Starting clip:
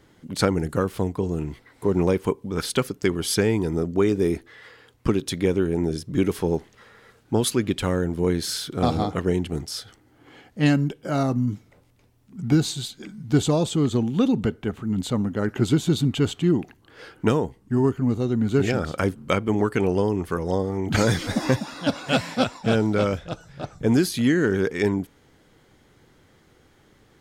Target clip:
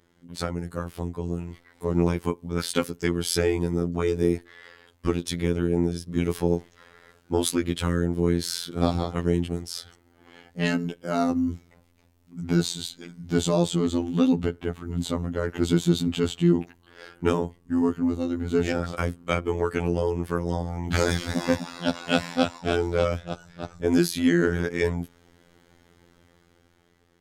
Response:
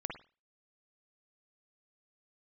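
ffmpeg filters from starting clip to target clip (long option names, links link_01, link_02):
-af "dynaudnorm=framelen=380:gausssize=7:maxgain=11.5dB,afftfilt=real='hypot(re,im)*cos(PI*b)':imag='0':win_size=2048:overlap=0.75,volume=-5dB"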